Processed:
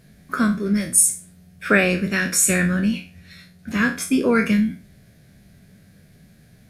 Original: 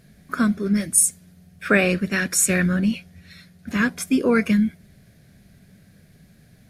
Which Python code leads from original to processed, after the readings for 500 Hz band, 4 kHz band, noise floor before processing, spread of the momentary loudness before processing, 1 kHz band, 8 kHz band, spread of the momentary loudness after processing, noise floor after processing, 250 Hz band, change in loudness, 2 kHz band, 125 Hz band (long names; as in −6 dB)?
+0.5 dB, +1.5 dB, −54 dBFS, 9 LU, +2.0 dB, +2.0 dB, 12 LU, −52 dBFS, +0.5 dB, +1.0 dB, +2.0 dB, +0.5 dB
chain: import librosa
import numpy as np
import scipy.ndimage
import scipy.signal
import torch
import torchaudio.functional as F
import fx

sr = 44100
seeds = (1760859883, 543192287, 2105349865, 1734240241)

y = fx.spec_trails(x, sr, decay_s=0.34)